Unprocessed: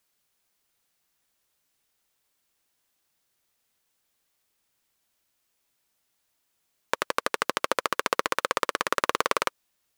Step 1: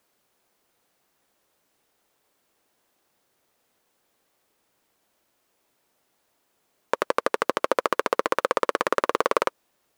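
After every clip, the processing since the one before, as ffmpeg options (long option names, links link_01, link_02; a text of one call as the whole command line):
ffmpeg -i in.wav -af "equalizer=frequency=460:width=0.34:gain=12,alimiter=limit=-6.5dB:level=0:latency=1:release=30,volume=1.5dB" out.wav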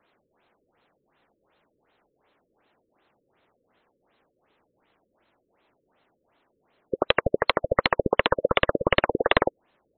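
ffmpeg -i in.wav -af "aeval=exprs='(mod(2.99*val(0)+1,2)-1)/2.99':channel_layout=same,afftfilt=real='re*lt(b*sr/1024,550*pow(4300/550,0.5+0.5*sin(2*PI*2.7*pts/sr)))':imag='im*lt(b*sr/1024,550*pow(4300/550,0.5+0.5*sin(2*PI*2.7*pts/sr)))':win_size=1024:overlap=0.75,volume=6.5dB" out.wav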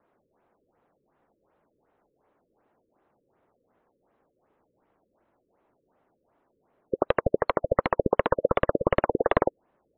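ffmpeg -i in.wav -af "lowpass=1200" out.wav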